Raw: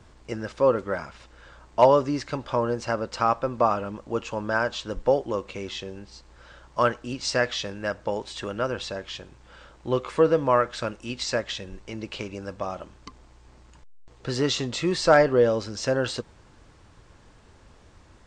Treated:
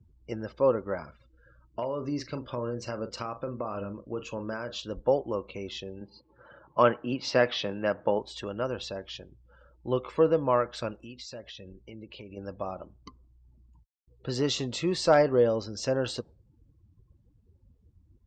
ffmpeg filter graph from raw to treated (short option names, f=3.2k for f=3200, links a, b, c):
-filter_complex "[0:a]asettb=1/sr,asplit=3[a][b][c];[a]atrim=end=1.034[d];[b]atrim=start=1.03:end=4.92,asetpts=PTS-STARTPTS,afade=t=in:d=0.004:c=qsin,afade=t=out:st=3.886:d=0.004:c=qsin,equalizer=f=810:w=2.6:g=-7,acompressor=threshold=-24dB:ratio=12:attack=3.2:release=140:knee=1:detection=peak,asplit=2[e][f];[f]adelay=41,volume=-10dB[g];[e][g]amix=inputs=2:normalize=0,atrim=end_sample=171549[h];[c]atrim=start=4.916[i];[d][h]acrossfade=d=0.004:c1=hsin:c2=qsin[j];[j][i]acrossfade=d=0.004:c1=qsin:c2=hsin,asettb=1/sr,asplit=3[k][l][m];[k]atrim=end=6.014[n];[l]atrim=start=6.01:end=8.19,asetpts=PTS-STARTPTS,afade=t=in:d=0.004:c=qsin,afade=t=out:st=2.176:d=0.004:c=qsin,acontrast=35,highpass=130,lowpass=3.4k[o];[m]atrim=start=8.186[p];[n][o]acrossfade=d=0.004:c1=hsin:c2=qsin[q];[q][p]acrossfade=d=0.004:c1=qsin:c2=hsin,asettb=1/sr,asplit=3[r][s][t];[r]atrim=end=11.034[u];[s]atrim=start=11.03:end=12.37,asetpts=PTS-STARTPTS,afade=t=in:d=0.004:c=qsin,afade=t=out:st=1.336:d=0.004:c=qsin,asoftclip=type=hard:threshold=-23dB,acompressor=threshold=-37dB:ratio=4:attack=3.2:release=140:knee=1:detection=peak[v];[t]atrim=start=12.366[w];[u][v]acrossfade=d=0.004:c1=hsin:c2=qsin[x];[x][w]acrossfade=d=0.004:c1=qsin:c2=hsin,highpass=42,afftdn=nr=29:nf=-45,equalizer=f=1.6k:t=o:w=0.87:g=-5.5,volume=-3dB"